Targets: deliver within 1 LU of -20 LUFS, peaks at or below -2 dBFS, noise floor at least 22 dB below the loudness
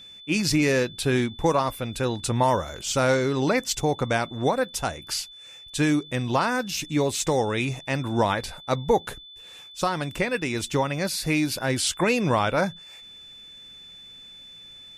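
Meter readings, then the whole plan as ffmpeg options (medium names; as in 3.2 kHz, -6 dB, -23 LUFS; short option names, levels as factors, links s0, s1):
steady tone 3.5 kHz; tone level -43 dBFS; loudness -25.0 LUFS; peak level -10.0 dBFS; loudness target -20.0 LUFS
-> -af "bandreject=f=3500:w=30"
-af "volume=1.78"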